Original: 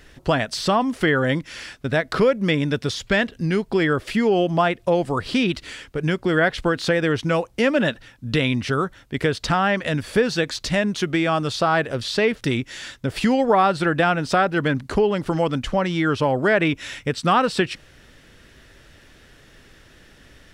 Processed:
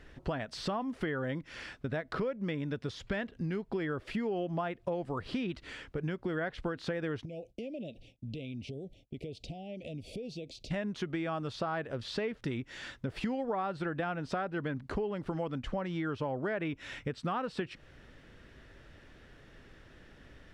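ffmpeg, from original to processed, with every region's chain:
-filter_complex "[0:a]asettb=1/sr,asplit=3[s0][s1][s2];[s0]atrim=end=7.254[s3];[s1]atrim=start=7.25:end=10.71,asetpts=PTS-STARTPTS,afade=t=in:d=0.004:c=qsin,afade=t=out:st=3.456:d=0.004:c=qsin,agate=range=0.0224:threshold=0.00631:ratio=3:release=100:detection=peak,acompressor=threshold=0.0224:ratio=5:attack=3.2:release=140:knee=1:detection=peak,asuperstop=centerf=1300:order=12:qfactor=0.81[s4];[s2]atrim=start=10.706[s5];[s3][s4]acrossfade=d=0.004:c1=hsin:c2=qsin[s6];[s6][s5]acrossfade=d=0.004:c1=qsin:c2=hsin,lowpass=f=1900:p=1,acompressor=threshold=0.0316:ratio=3,volume=0.596"

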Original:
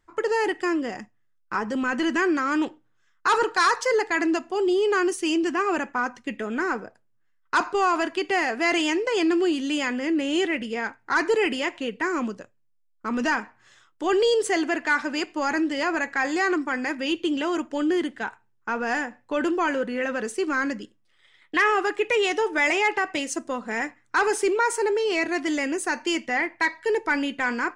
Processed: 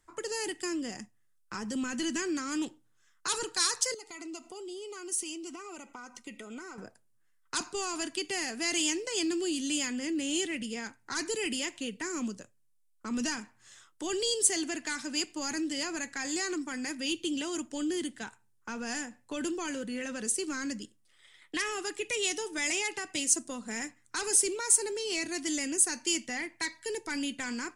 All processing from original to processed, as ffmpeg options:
-filter_complex "[0:a]asettb=1/sr,asplit=3[s0][s1][s2];[s0]atrim=end=3.944[s3];[s1]atrim=start=3.94:end=6.78,asetpts=PTS-STARTPTS,afade=t=in:d=0.004:c=qsin,afade=t=out:st=2.836:d=0.004:c=qsin,equalizer=f=86:w=0.57:g=-9,acompressor=threshold=0.0158:ratio=3:attack=3.2:release=140:knee=1:detection=peak,asuperstop=centerf=1700:order=20:qfactor=6[s4];[s2]atrim=start=6.776[s5];[s3][s4]acrossfade=d=0.004:c1=hsin:c2=qsin[s6];[s6][s5]acrossfade=d=0.004:c1=qsin:c2=hsin,equalizer=f=9700:w=0.7:g=14,acrossover=split=270|3000[s7][s8][s9];[s8]acompressor=threshold=0.00398:ratio=2[s10];[s7][s10][s9]amix=inputs=3:normalize=0,volume=0.75"

